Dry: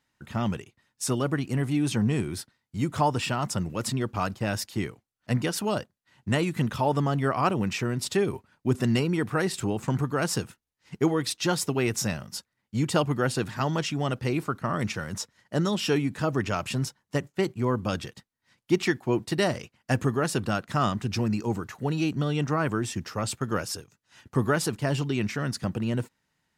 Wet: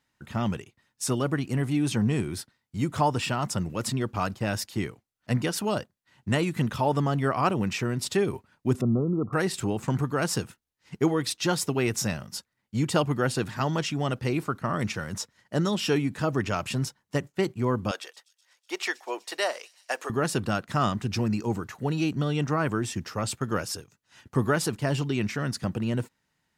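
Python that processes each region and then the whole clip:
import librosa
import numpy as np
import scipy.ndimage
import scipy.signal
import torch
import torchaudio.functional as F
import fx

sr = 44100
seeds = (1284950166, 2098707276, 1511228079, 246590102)

y = fx.chain(x, sr, fx.brickwall_lowpass(high_hz=1400.0),
    fx.peak_eq(hz=910.0, db=-10.5, octaves=0.32), at=(8.81, 9.33))
y = fx.chain(y, sr, fx.highpass(hz=500.0, slope=24),
    fx.echo_wet_highpass(ms=124, feedback_pct=78, hz=5500.0, wet_db=-17), at=(17.91, 20.1))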